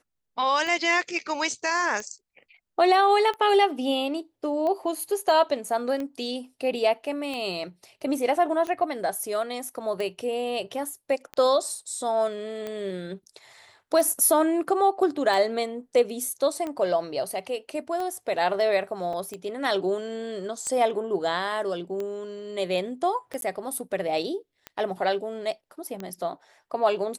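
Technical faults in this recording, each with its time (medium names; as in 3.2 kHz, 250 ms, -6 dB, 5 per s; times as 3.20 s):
tick 45 rpm -20 dBFS
19.13 s: dropout 4 ms
23.41–23.42 s: dropout 12 ms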